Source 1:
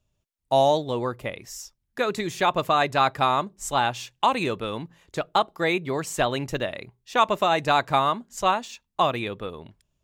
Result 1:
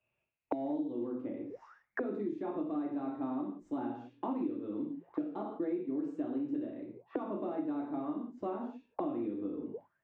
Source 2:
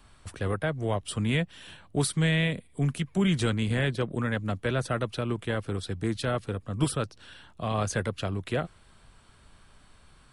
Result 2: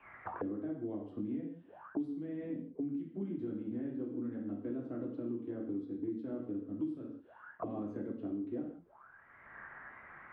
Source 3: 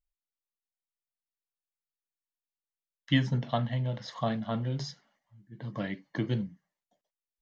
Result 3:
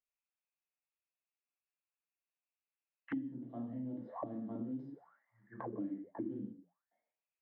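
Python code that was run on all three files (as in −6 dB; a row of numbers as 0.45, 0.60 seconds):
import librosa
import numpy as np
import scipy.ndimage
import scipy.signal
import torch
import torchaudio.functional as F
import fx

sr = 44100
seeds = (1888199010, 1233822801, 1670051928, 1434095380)

y = fx.rev_gated(x, sr, seeds[0], gate_ms=200, shape='falling', drr_db=-2.0)
y = fx.dynamic_eq(y, sr, hz=140.0, q=3.7, threshold_db=-44.0, ratio=4.0, max_db=-7)
y = 10.0 ** (-9.0 / 20.0) * np.tanh(y / 10.0 ** (-9.0 / 20.0))
y = fx.env_lowpass(y, sr, base_hz=780.0, full_db=-22.5)
y = fx.rider(y, sr, range_db=3, speed_s=2.0)
y = fx.auto_wah(y, sr, base_hz=290.0, top_hz=2600.0, q=11.0, full_db=-29.5, direction='down')
y = fx.high_shelf(y, sr, hz=5200.0, db=-11.5)
y = fx.band_squash(y, sr, depth_pct=100)
y = y * 10.0 ** (2.0 / 20.0)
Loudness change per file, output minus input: −13.5, −11.0, −11.0 LU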